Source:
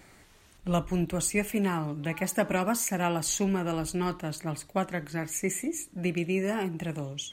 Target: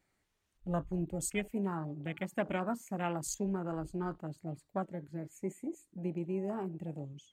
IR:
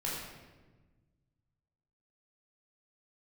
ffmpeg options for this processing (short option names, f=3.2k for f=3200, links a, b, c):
-filter_complex "[0:a]afwtdn=0.0224,asettb=1/sr,asplit=3[a][b][c];[a]atrim=end=4.844[d];[b]atrim=start=4.84:end=5.28,asetpts=PTS-STARTPTS,afade=t=in:d=0.004:c=qsin,afade=t=out:st=0.436:d=0.004:c=qsin,asuperstop=centerf=740:order=4:qfactor=5.7[e];[c]atrim=start=5.276[f];[d][e]acrossfade=d=0.004:c1=hsin:c2=qsin[g];[g][f]acrossfade=d=0.004:c1=qsin:c2=hsin,volume=-7dB"